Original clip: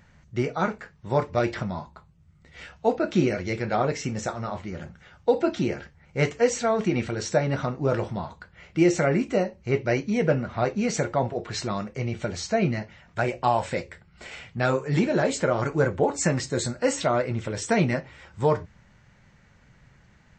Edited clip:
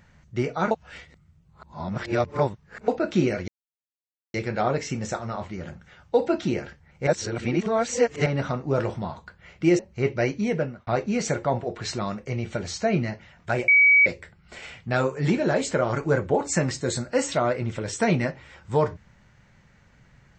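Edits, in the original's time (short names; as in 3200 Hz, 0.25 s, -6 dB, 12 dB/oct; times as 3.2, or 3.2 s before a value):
0.71–2.88 reverse
3.48 insert silence 0.86 s
6.21–7.4 reverse
8.93–9.48 cut
10.13–10.56 fade out
13.37–13.75 bleep 2270 Hz -12.5 dBFS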